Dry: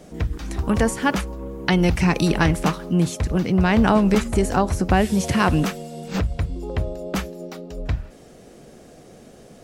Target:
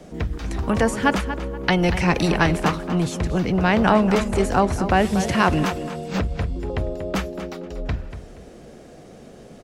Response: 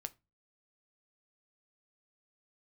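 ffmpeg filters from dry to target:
-filter_complex "[0:a]highshelf=f=7.2k:g=-8.5,acrossover=split=360|1000|2100[a][b][c][d];[a]asoftclip=type=tanh:threshold=-21dB[e];[e][b][c][d]amix=inputs=4:normalize=0,asplit=2[f][g];[g]adelay=237,lowpass=f=4.3k:p=1,volume=-10.5dB,asplit=2[h][i];[i]adelay=237,lowpass=f=4.3k:p=1,volume=0.28,asplit=2[j][k];[k]adelay=237,lowpass=f=4.3k:p=1,volume=0.28[l];[f][h][j][l]amix=inputs=4:normalize=0,volume=2dB"

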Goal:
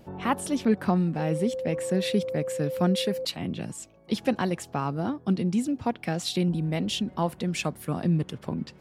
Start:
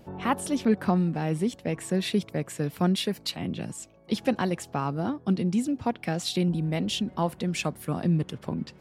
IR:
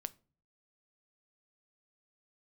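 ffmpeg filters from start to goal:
-filter_complex "[0:a]asettb=1/sr,asplit=3[a][b][c];[a]atrim=end=1.194[d];[b]atrim=start=1.19:end=3.25,asetpts=PTS-STARTPTS,afade=t=in:d=0.004:c=qsin,afade=t=out:st=2.056:d=0.004:c=qsin,aeval=exprs='val(0)+0.0355*sin(2*PI*520*n/s)':c=same[e];[c]atrim=start=3.246[f];[d][e]acrossfade=d=0.004:c1=hsin:c2=qsin[g];[g][f]acrossfade=d=0.004:c1=qsin:c2=hsin"

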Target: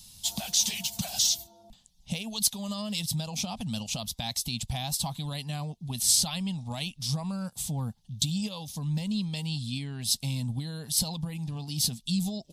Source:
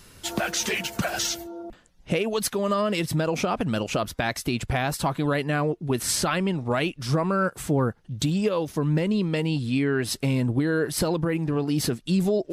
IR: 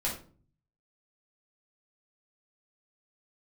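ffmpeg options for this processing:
-af "firequalizer=gain_entry='entry(220,0);entry(340,-23);entry(800,-2);entry(1400,-19);entry(3500,9)':delay=0.05:min_phase=1,volume=-5.5dB"

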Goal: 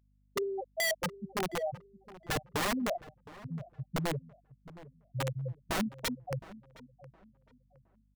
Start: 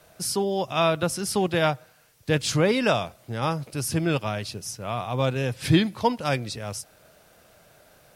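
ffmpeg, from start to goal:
-filter_complex "[0:a]aeval=exprs='val(0)+0.5*0.0531*sgn(val(0))':c=same,bandreject=f=58.86:t=h:w=4,bandreject=f=117.72:t=h:w=4,afftfilt=real='re*gte(hypot(re,im),0.631)':imag='im*gte(hypot(re,im),0.631)':win_size=1024:overlap=0.75,afftdn=nr=32:nf=-49,acrossover=split=150|970[a][b][c];[b]aphaser=in_gain=1:out_gain=1:delay=1.6:decay=0.29:speed=0.44:type=sinusoidal[d];[c]aexciter=amount=11.5:drive=3:freq=3.8k[e];[a][d][e]amix=inputs=3:normalize=0,aeval=exprs='val(0)+0.001*(sin(2*PI*50*n/s)+sin(2*PI*2*50*n/s)/2+sin(2*PI*3*50*n/s)/3+sin(2*PI*4*50*n/s)/4+sin(2*PI*5*50*n/s)/5)':c=same,aeval=exprs='(mod(7.94*val(0)+1,2)-1)/7.94':c=same,asplit=2[f][g];[g]adelay=715,lowpass=f=1.7k:p=1,volume=-17dB,asplit=2[h][i];[i]adelay=715,lowpass=f=1.7k:p=1,volume=0.3,asplit=2[j][k];[k]adelay=715,lowpass=f=1.7k:p=1,volume=0.3[l];[f][h][j][l]amix=inputs=4:normalize=0,volume=-8dB"

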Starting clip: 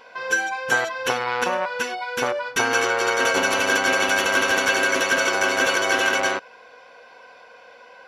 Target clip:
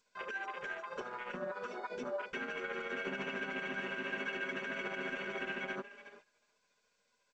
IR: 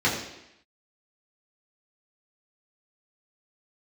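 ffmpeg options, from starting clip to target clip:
-filter_complex "[0:a]afwtdn=0.0708,atempo=1.1,asplit=2[a][b];[b]asoftclip=type=hard:threshold=-15.5dB,volume=-11dB[c];[a][c]amix=inputs=2:normalize=0,acompressor=threshold=-31dB:ratio=12,equalizer=f=830:w=1.2:g=-8.5,alimiter=level_in=8.5dB:limit=-24dB:level=0:latency=1:release=65,volume=-8.5dB,asplit=4[d][e][f][g];[e]adelay=371,afreqshift=36,volume=-16dB[h];[f]adelay=742,afreqshift=72,volume=-25.1dB[i];[g]adelay=1113,afreqshift=108,volume=-34.2dB[j];[d][h][i][j]amix=inputs=4:normalize=0,agate=range=-17dB:threshold=-58dB:ratio=16:detection=peak,tremolo=f=14:d=0.44,bass=f=250:g=9,treble=f=4k:g=-5,aecho=1:1:4.9:0.82,volume=1.5dB" -ar 16000 -c:a g722

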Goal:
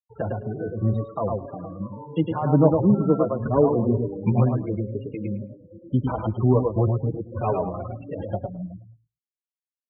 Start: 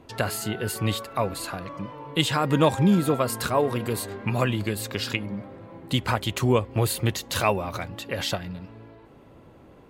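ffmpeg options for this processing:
-filter_complex "[0:a]asettb=1/sr,asplit=3[a][b][c];[a]atrim=end=3.384[d];[b]atrim=start=3.38:end=4.32,asetpts=PTS-STARTPTS,afade=t=in:d=0.004:c=qsin,afade=t=out:st=0.936:d=0.004:c=qsin,lowshelf=f=360:g=6.5[e];[c]atrim=start=4.316[f];[d][e]acrossfade=d=0.004:c1=hsin:c2=qsin[g];[g][f]acrossfade=d=0.004:c1=qsin:c2=hsin,asplit=2[h][i];[i]adelay=260,highpass=300,lowpass=3.4k,asoftclip=type=hard:threshold=-15.5dB,volume=-16dB[j];[h][j]amix=inputs=2:normalize=0,adynamicequalizer=threshold=0.00355:dfrequency=4400:dqfactor=3.5:tfrequency=4400:tqfactor=3.5:attack=5:release=100:ratio=0.375:range=1.5:mode=cutabove:tftype=bell,acrossover=split=350|950[k][l][m];[m]acompressor=threshold=-42dB:ratio=8[n];[k][l][n]amix=inputs=3:normalize=0,afftfilt=real='re*gte(hypot(re,im),0.0447)':imag='im*gte(hypot(re,im),0.0447)':win_size=1024:overlap=0.75,asplit=2[o][p];[p]aecho=0:1:107|214|321:0.668|0.107|0.0171[q];[o][q]amix=inputs=2:normalize=0,asplit=2[r][s];[s]adelay=4.9,afreqshift=2[t];[r][t]amix=inputs=2:normalize=1,volume=4dB"

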